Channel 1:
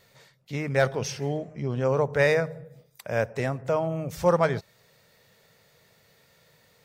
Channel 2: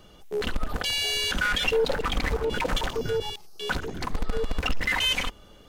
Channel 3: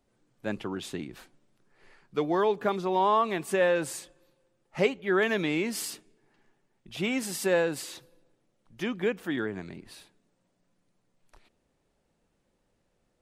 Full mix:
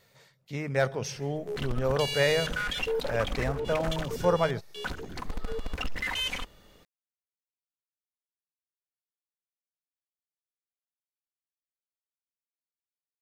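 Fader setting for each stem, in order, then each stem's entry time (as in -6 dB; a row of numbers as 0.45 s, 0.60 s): -3.5 dB, -6.5 dB, mute; 0.00 s, 1.15 s, mute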